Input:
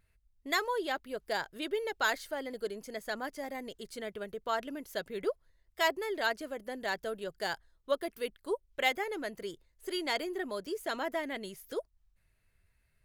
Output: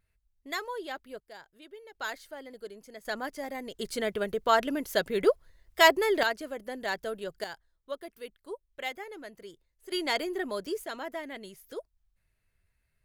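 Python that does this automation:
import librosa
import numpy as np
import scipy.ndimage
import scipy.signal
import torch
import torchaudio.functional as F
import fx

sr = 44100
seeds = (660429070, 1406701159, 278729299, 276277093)

y = fx.gain(x, sr, db=fx.steps((0.0, -4.0), (1.2, -14.5), (1.95, -6.0), (3.05, 2.5), (3.79, 9.5), (6.23, 2.0), (7.44, -6.5), (9.92, 3.5), (10.84, -3.0)))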